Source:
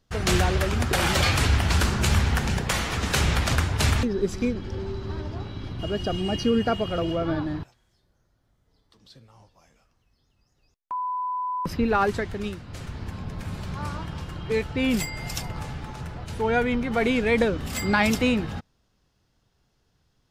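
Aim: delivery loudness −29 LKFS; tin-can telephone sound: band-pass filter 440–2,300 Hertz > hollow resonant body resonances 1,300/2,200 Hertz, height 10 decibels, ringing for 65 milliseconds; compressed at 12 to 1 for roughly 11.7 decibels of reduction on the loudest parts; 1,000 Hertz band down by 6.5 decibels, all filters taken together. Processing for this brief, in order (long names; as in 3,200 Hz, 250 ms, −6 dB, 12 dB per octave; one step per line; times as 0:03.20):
parametric band 1,000 Hz −8 dB
downward compressor 12 to 1, threshold −29 dBFS
band-pass filter 440–2,300 Hz
hollow resonant body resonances 1,300/2,200 Hz, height 10 dB, ringing for 65 ms
level +11 dB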